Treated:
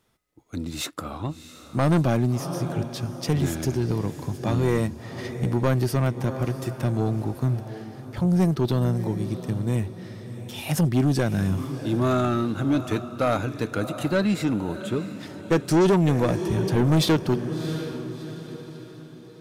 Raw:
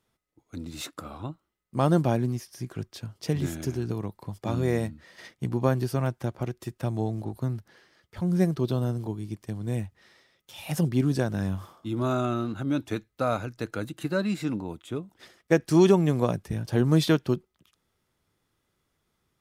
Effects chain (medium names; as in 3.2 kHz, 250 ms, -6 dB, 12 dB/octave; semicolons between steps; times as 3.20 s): echo that smears into a reverb 682 ms, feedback 43%, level -13.5 dB; saturation -21 dBFS, distortion -10 dB; trim +6.5 dB